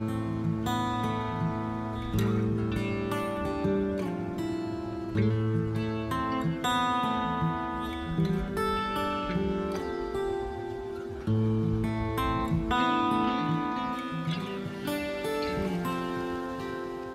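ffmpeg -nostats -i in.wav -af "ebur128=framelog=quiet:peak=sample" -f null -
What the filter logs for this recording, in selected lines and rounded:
Integrated loudness:
  I:         -30.1 LUFS
  Threshold: -40.1 LUFS
Loudness range:
  LRA:         2.5 LU
  Threshold: -49.9 LUFS
  LRA low:   -31.0 LUFS
  LRA high:  -28.5 LUFS
Sample peak:
  Peak:      -14.5 dBFS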